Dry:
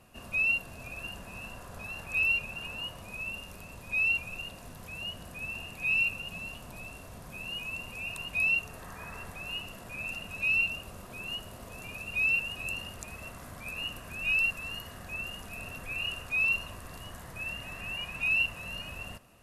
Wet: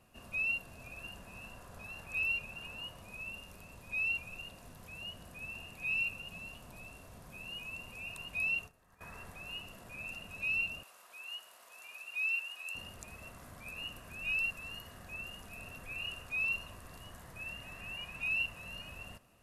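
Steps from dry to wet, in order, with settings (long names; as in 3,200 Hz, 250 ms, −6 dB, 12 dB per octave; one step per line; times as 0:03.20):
0:08.58–0:09.01: noise gate −41 dBFS, range −17 dB
0:10.83–0:12.75: high-pass filter 920 Hz 12 dB per octave
level −6.5 dB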